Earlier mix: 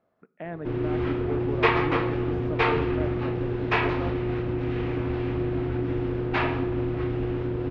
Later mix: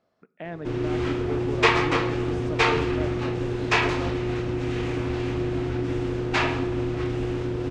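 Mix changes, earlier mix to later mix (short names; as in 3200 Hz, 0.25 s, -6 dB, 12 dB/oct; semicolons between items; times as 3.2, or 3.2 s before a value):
speech: remove LPF 2200 Hz; background: remove air absorption 320 m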